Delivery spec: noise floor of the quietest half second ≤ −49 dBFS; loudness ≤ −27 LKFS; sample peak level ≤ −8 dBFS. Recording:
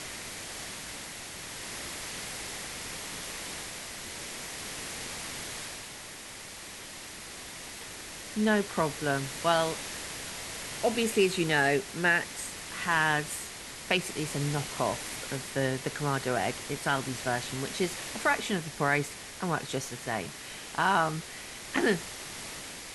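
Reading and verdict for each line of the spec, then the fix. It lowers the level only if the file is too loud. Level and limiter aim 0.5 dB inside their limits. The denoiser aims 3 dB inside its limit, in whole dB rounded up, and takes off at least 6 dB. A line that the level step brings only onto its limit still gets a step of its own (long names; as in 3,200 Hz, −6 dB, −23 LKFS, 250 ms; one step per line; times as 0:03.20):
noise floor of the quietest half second −44 dBFS: out of spec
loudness −31.5 LKFS: in spec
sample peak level −11.5 dBFS: in spec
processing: broadband denoise 8 dB, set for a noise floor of −44 dBFS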